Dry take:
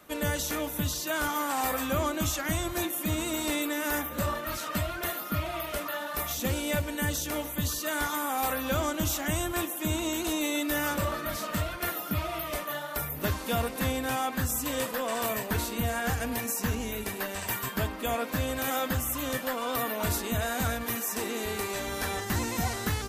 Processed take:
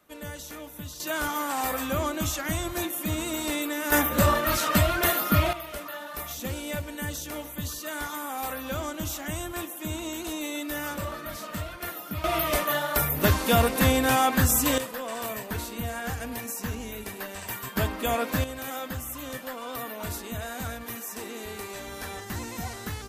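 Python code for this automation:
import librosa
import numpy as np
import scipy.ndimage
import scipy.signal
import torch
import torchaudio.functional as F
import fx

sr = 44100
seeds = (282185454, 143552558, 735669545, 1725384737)

y = fx.gain(x, sr, db=fx.steps((0.0, -9.0), (1.0, 0.5), (3.92, 9.0), (5.53, -3.5), (12.24, 8.0), (14.78, -3.0), (17.76, 3.5), (18.44, -5.0)))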